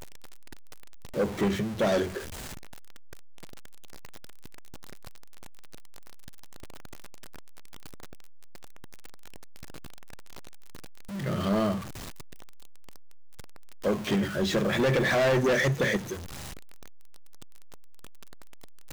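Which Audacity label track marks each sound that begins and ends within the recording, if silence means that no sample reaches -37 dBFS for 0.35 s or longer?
1.150000	2.200000	sound
11.110000	11.810000	sound
13.850000	16.170000	sound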